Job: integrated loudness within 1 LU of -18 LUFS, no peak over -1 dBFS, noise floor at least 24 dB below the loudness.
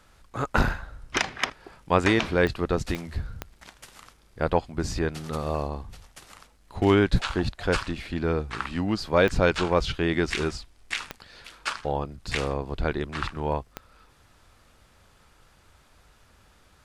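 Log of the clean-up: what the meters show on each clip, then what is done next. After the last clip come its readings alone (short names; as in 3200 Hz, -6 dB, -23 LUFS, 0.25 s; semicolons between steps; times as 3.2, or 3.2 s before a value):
clicks 6; loudness -27.0 LUFS; peak -6.5 dBFS; loudness target -18.0 LUFS
-> de-click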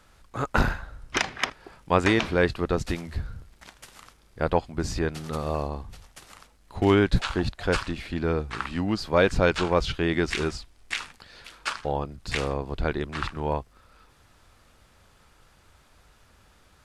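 clicks 0; loudness -27.0 LUFS; peak -6.5 dBFS; loudness target -18.0 LUFS
-> gain +9 dB; limiter -1 dBFS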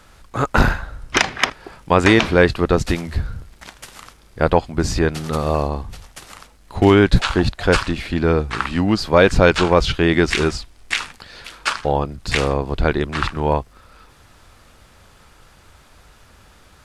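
loudness -18.5 LUFS; peak -1.0 dBFS; noise floor -50 dBFS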